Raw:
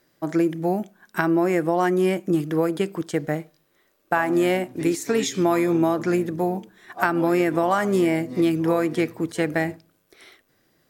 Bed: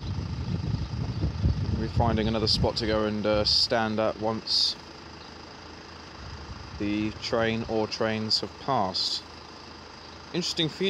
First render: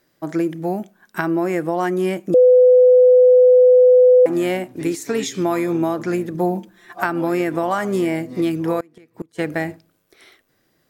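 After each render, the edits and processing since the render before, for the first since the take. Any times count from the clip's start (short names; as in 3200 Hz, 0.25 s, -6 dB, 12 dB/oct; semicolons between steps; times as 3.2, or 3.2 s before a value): 2.34–4.26 bleep 502 Hz -7 dBFS; 6.34–7 comb 5.8 ms; 8.8–9.39 flipped gate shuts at -18 dBFS, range -27 dB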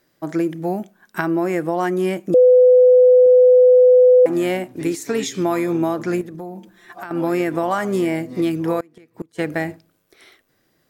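3.26–4.25 three-band expander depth 40%; 6.21–7.11 compressor 2.5:1, threshold -34 dBFS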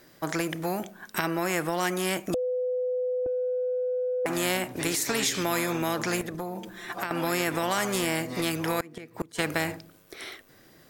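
limiter -10 dBFS, peak gain reduction 5 dB; spectral compressor 2:1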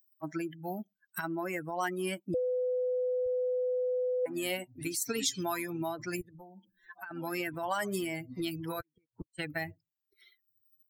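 per-bin expansion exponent 3; upward compressor, threshold -52 dBFS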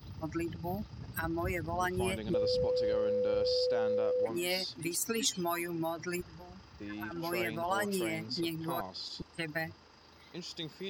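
add bed -14.5 dB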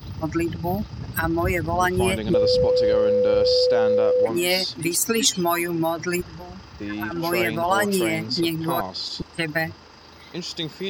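gain +12 dB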